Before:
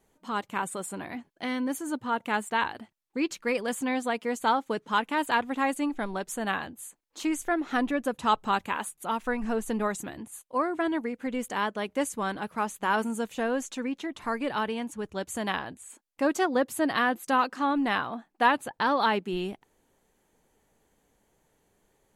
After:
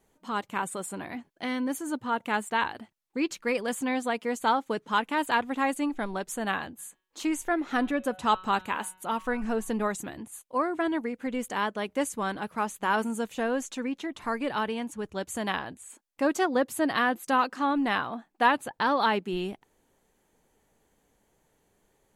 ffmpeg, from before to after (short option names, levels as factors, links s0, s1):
-filter_complex "[0:a]asplit=3[s0][s1][s2];[s0]afade=t=out:st=6.78:d=0.02[s3];[s1]bandreject=f=185.7:t=h:w=4,bandreject=f=371.4:t=h:w=4,bandreject=f=557.1:t=h:w=4,bandreject=f=742.8:t=h:w=4,bandreject=f=928.5:t=h:w=4,bandreject=f=1114.2:t=h:w=4,bandreject=f=1299.9:t=h:w=4,bandreject=f=1485.6:t=h:w=4,bandreject=f=1671.3:t=h:w=4,bandreject=f=1857:t=h:w=4,bandreject=f=2042.7:t=h:w=4,bandreject=f=2228.4:t=h:w=4,bandreject=f=2414.1:t=h:w=4,bandreject=f=2599.8:t=h:w=4,bandreject=f=2785.5:t=h:w=4,bandreject=f=2971.2:t=h:w=4,bandreject=f=3156.9:t=h:w=4,bandreject=f=3342.6:t=h:w=4,bandreject=f=3528.3:t=h:w=4,bandreject=f=3714:t=h:w=4,bandreject=f=3899.7:t=h:w=4,bandreject=f=4085.4:t=h:w=4,afade=t=in:st=6.78:d=0.02,afade=t=out:st=9.72:d=0.02[s4];[s2]afade=t=in:st=9.72:d=0.02[s5];[s3][s4][s5]amix=inputs=3:normalize=0"